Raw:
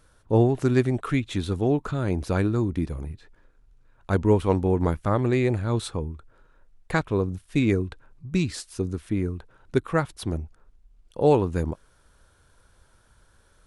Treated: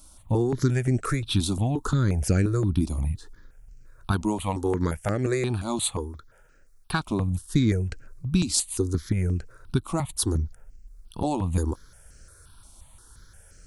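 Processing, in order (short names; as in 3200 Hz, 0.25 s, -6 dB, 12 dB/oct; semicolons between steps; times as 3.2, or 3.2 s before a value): 4.11–7.07 low shelf 220 Hz -10.5 dB; compressor 5:1, threshold -24 dBFS, peak gain reduction 10 dB; tone controls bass +4 dB, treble +12 dB; step phaser 5.7 Hz 460–3600 Hz; gain +5 dB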